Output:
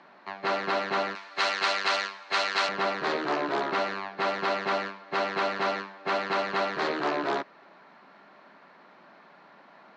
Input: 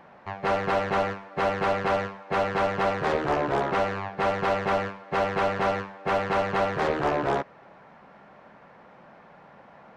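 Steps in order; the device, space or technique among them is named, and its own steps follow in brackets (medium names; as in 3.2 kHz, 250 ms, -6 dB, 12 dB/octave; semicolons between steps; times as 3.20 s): television speaker (cabinet simulation 210–7000 Hz, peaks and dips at 220 Hz -4 dB, 500 Hz -9 dB, 790 Hz -5 dB, 4.2 kHz +9 dB); 1.15–2.69 s: tilt EQ +4.5 dB/octave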